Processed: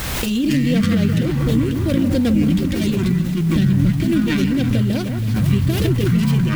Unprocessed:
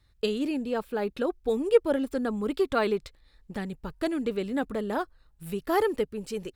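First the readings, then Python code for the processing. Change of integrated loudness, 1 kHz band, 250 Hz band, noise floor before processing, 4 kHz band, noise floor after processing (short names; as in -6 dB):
+11.0 dB, -1.5 dB, +15.0 dB, -63 dBFS, +12.5 dB, -22 dBFS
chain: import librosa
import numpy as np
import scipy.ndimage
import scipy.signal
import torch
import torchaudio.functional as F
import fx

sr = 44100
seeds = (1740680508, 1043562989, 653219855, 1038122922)

p1 = fx.tracing_dist(x, sr, depth_ms=0.36)
p2 = fx.curve_eq(p1, sr, hz=(490.0, 960.0, 3100.0), db=(0, -16, 11))
p3 = fx.echo_pitch(p2, sr, ms=145, semitones=-7, count=3, db_per_echo=-6.0)
p4 = fx.over_compress(p3, sr, threshold_db=-27.0, ratio=-0.5)
p5 = fx.notch_comb(p4, sr, f0_hz=430.0)
p6 = p5 + fx.echo_alternate(p5, sr, ms=158, hz=2000.0, feedback_pct=67, wet_db=-8.5, dry=0)
p7 = fx.dmg_noise_colour(p6, sr, seeds[0], colour='white', level_db=-44.0)
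p8 = fx.bass_treble(p7, sr, bass_db=13, treble_db=-8)
p9 = fx.pre_swell(p8, sr, db_per_s=21.0)
y = p9 * 10.0 ** (4.0 / 20.0)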